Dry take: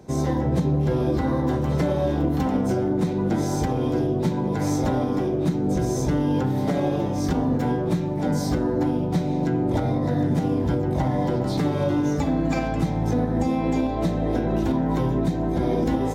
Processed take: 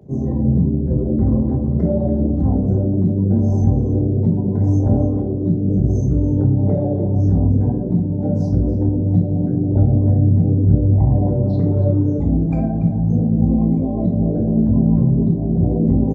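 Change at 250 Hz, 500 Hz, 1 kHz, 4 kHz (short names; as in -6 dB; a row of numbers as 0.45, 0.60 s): +5.0 dB, 0.0 dB, -7.0 dB, under -20 dB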